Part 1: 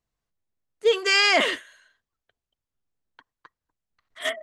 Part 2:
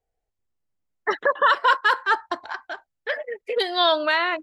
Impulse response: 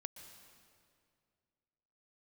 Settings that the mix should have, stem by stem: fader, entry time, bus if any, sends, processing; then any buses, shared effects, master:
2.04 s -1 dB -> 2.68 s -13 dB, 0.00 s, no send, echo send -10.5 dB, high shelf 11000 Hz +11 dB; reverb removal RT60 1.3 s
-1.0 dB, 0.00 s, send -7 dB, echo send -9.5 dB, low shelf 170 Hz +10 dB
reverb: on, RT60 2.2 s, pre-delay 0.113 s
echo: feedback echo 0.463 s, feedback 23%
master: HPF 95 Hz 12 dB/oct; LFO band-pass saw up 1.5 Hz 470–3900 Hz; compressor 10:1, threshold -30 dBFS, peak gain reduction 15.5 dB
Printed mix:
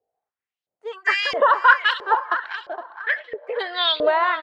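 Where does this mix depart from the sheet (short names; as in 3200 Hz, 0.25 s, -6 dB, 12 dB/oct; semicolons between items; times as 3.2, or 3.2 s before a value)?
stem 2 -1.0 dB -> +6.0 dB; master: missing compressor 10:1, threshold -30 dBFS, peak gain reduction 15.5 dB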